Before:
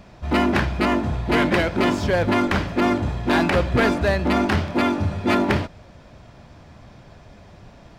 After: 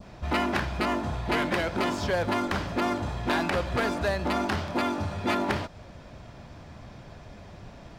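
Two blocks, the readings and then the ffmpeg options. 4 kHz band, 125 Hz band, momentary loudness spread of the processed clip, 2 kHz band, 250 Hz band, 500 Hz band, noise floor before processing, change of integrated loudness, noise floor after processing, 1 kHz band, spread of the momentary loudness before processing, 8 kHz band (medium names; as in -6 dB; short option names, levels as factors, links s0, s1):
-5.0 dB, -8.5 dB, 20 LU, -6.5 dB, -9.0 dB, -7.0 dB, -47 dBFS, -7.5 dB, -47 dBFS, -5.0 dB, 4 LU, -3.0 dB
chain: -filter_complex "[0:a]acrossover=split=600|6200[s0][s1][s2];[s0]acompressor=threshold=0.0316:ratio=4[s3];[s1]acompressor=threshold=0.0562:ratio=4[s4];[s2]acompressor=threshold=0.00398:ratio=4[s5];[s3][s4][s5]amix=inputs=3:normalize=0,adynamicequalizer=threshold=0.00708:dfrequency=2200:dqfactor=1.2:tfrequency=2200:tqfactor=1.2:attack=5:release=100:ratio=0.375:range=2.5:mode=cutabove:tftype=bell"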